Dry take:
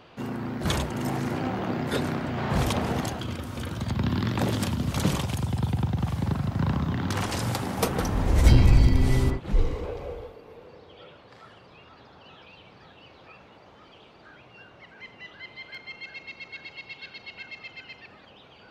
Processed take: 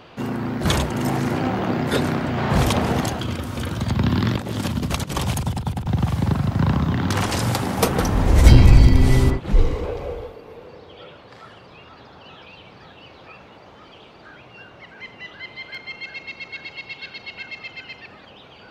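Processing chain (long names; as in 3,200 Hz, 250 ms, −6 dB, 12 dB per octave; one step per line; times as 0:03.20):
0:04.35–0:05.86: compressor whose output falls as the input rises −30 dBFS, ratio −0.5
level +6.5 dB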